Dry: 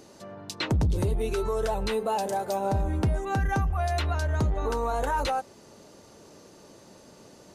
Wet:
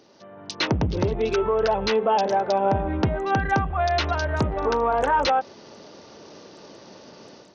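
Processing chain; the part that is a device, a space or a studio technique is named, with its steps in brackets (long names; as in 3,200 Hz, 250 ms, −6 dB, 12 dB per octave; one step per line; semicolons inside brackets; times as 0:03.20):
Bluetooth headset (high-pass filter 200 Hz 6 dB per octave; automatic gain control gain up to 10.5 dB; downsampling to 16,000 Hz; level −3 dB; SBC 64 kbit/s 48,000 Hz)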